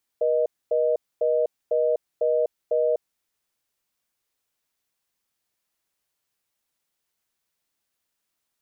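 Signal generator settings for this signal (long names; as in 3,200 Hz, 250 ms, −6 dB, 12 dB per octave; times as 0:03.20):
call progress tone reorder tone, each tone −21.5 dBFS 3.00 s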